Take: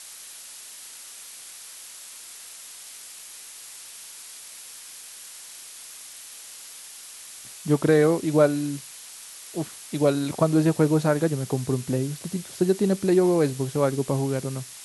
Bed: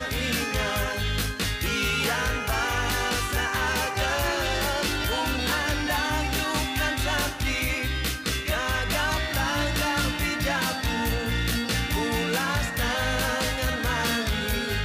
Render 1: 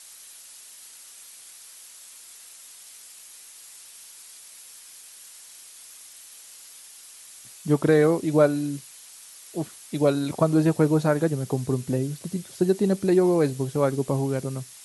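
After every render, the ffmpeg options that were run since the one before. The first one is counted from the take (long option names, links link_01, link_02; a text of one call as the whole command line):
ffmpeg -i in.wav -af "afftdn=noise_reduction=6:noise_floor=-43" out.wav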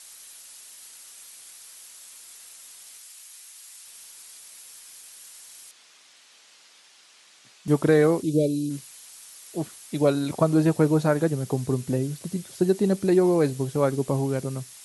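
ffmpeg -i in.wav -filter_complex "[0:a]asettb=1/sr,asplit=3[link_01][link_02][link_03];[link_01]atrim=end=2.984[link_04];[link_02]atrim=start=2.98:end=3.87,asetpts=PTS-STARTPTS,afade=type=in:duration=0.004:curve=qsin,afade=type=out:start_time=0.886:duration=0.004:curve=qsin,highpass=frequency=960:poles=1[link_05];[link_03]atrim=start=3.866[link_06];[link_04][link_05]acrossfade=duration=0.004:curve1=hsin:curve2=qsin[link_07];[link_07][link_06]acrossfade=duration=0.004:curve1=qsin:curve2=hsin,asettb=1/sr,asplit=3[link_08][link_09][link_10];[link_08]atrim=end=5.714[link_11];[link_09]atrim=start=5.71:end=7.68,asetpts=PTS-STARTPTS,afade=type=in:duration=0.004:curve=qsin,afade=type=out:start_time=1.966:duration=0.004:curve=qsin,highpass=170,lowpass=4400[link_12];[link_10]atrim=start=7.676[link_13];[link_11][link_12]acrossfade=duration=0.004:curve1=hsin:curve2=qsin[link_14];[link_14][link_13]acrossfade=duration=0.004:curve1=qsin:curve2=hsin,asplit=3[link_15][link_16][link_17];[link_15]afade=type=out:start_time=8.22:duration=0.02[link_18];[link_16]asuperstop=centerf=1200:order=8:qfactor=0.52,afade=type=in:start_time=8.22:duration=0.02,afade=type=out:start_time=8.69:duration=0.02[link_19];[link_17]afade=type=in:start_time=8.69:duration=0.02[link_20];[link_18][link_19][link_20]amix=inputs=3:normalize=0" out.wav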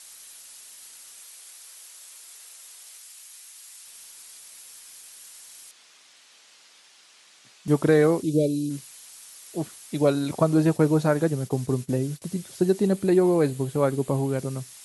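ffmpeg -i in.wav -filter_complex "[0:a]asettb=1/sr,asplit=3[link_01][link_02][link_03];[link_01]atrim=end=1.204[link_04];[link_02]atrim=start=1.2:end=3.28,asetpts=PTS-STARTPTS,afade=type=in:duration=0.004:curve=qsin,afade=type=out:start_time=2.076:duration=0.004:curve=qsin,highpass=frequency=330:width=0.5412,highpass=frequency=330:width=1.3066[link_05];[link_03]atrim=start=3.276[link_06];[link_04][link_05]acrossfade=duration=0.004:curve1=hsin:curve2=qsin[link_07];[link_07][link_06]acrossfade=duration=0.004:curve1=qsin:curve2=hsin,asettb=1/sr,asplit=3[link_08][link_09][link_10];[link_08]atrim=end=10.584[link_11];[link_09]atrim=start=10.58:end=12.22,asetpts=PTS-STARTPTS,afade=type=in:duration=0.004:curve=qsin,afade=type=out:start_time=1.636:duration=0.004:curve=qsin,agate=range=-33dB:threshold=-33dB:ratio=3:release=100:detection=peak[link_12];[link_10]atrim=start=12.216[link_13];[link_11][link_12]acrossfade=duration=0.004:curve1=hsin:curve2=qsin[link_14];[link_14][link_13]acrossfade=duration=0.004:curve1=qsin:curve2=hsin,asettb=1/sr,asplit=3[link_15][link_16][link_17];[link_15]atrim=end=12.874[link_18];[link_16]atrim=start=12.87:end=14.39,asetpts=PTS-STARTPTS,afade=type=in:duration=0.004:curve=qsin,afade=type=out:start_time=1.516:duration=0.004:curve=qsin,equalizer=frequency=5600:width_type=o:width=0.36:gain=-7.5[link_19];[link_17]atrim=start=14.386[link_20];[link_18][link_19]acrossfade=duration=0.004:curve1=hsin:curve2=qsin[link_21];[link_21][link_20]acrossfade=duration=0.004:curve1=qsin:curve2=hsin" out.wav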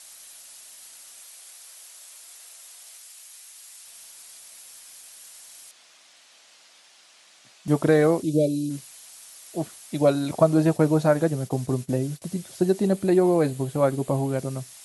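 ffmpeg -i in.wav -af "equalizer=frequency=660:width=2.9:gain=5.5,bandreject=frequency=430:width=12" out.wav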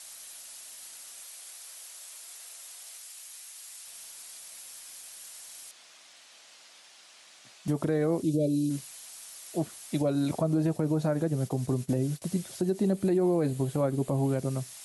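ffmpeg -i in.wav -filter_complex "[0:a]acrossover=split=430[link_01][link_02];[link_02]acompressor=threshold=-38dB:ratio=1.5[link_03];[link_01][link_03]amix=inputs=2:normalize=0,alimiter=limit=-18dB:level=0:latency=1:release=92" out.wav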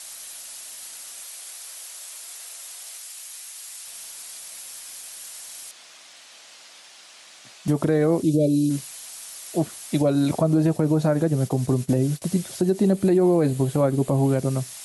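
ffmpeg -i in.wav -af "volume=7dB" out.wav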